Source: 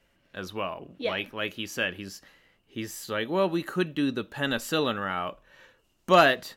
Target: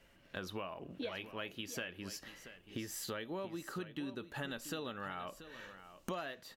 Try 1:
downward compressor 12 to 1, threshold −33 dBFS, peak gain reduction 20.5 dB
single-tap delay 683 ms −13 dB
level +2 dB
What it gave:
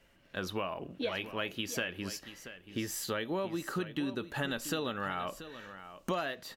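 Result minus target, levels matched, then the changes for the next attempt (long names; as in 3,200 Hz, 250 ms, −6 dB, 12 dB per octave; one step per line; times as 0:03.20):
downward compressor: peak gain reduction −7.5 dB
change: downward compressor 12 to 1, threshold −41 dBFS, peak gain reduction 27.5 dB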